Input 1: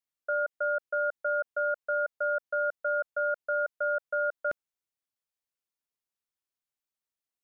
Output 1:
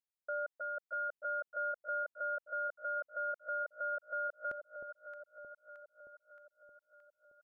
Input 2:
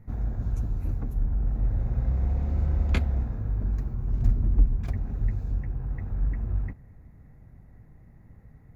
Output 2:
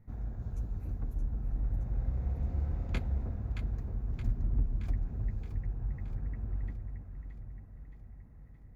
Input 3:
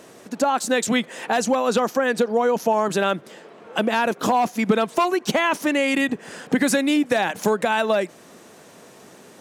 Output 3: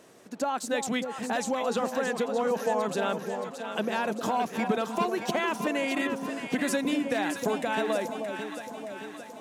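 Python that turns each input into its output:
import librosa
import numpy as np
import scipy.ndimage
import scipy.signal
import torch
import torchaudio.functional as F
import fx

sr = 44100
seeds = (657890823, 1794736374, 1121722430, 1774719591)

y = fx.echo_alternate(x, sr, ms=311, hz=860.0, feedback_pct=76, wet_db=-5)
y = y * 10.0 ** (-9.0 / 20.0)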